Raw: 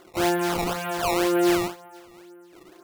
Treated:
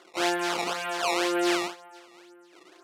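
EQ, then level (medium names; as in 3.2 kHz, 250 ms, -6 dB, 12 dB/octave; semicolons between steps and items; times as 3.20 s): high-pass 300 Hz 12 dB/octave; distance through air 64 m; tilt shelf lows -4.5 dB, about 1.4 kHz; 0.0 dB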